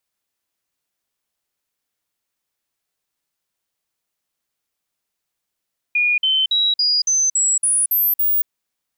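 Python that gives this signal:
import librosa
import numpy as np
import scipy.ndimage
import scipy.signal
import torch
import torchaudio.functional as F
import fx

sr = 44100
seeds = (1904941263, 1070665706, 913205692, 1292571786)

y = fx.stepped_sweep(sr, from_hz=2440.0, direction='up', per_octave=3, tones=9, dwell_s=0.23, gap_s=0.05, level_db=-14.0)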